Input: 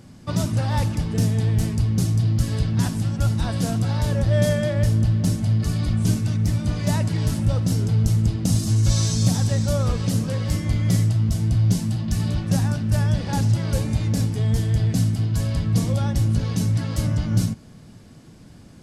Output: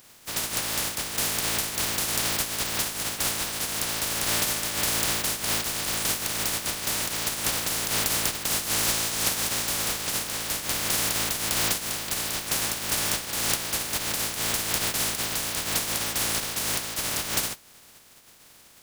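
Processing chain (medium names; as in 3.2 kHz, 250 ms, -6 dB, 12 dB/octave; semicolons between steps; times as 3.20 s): spectral contrast reduction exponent 0.12; trim -7 dB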